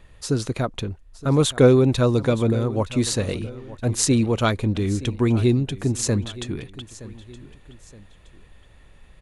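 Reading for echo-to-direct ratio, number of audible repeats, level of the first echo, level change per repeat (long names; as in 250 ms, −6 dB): −17.0 dB, 2, −17.5 dB, −7.5 dB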